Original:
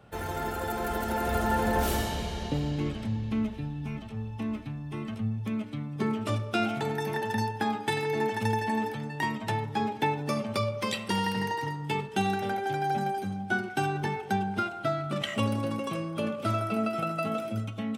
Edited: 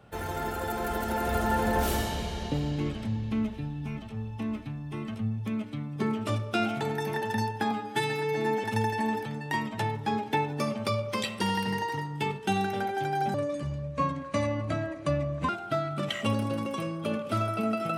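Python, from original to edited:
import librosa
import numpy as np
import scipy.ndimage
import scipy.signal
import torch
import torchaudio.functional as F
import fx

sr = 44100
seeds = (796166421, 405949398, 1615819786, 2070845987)

y = fx.edit(x, sr, fx.stretch_span(start_s=7.71, length_s=0.62, factor=1.5),
    fx.speed_span(start_s=13.03, length_s=1.59, speed=0.74), tone=tone)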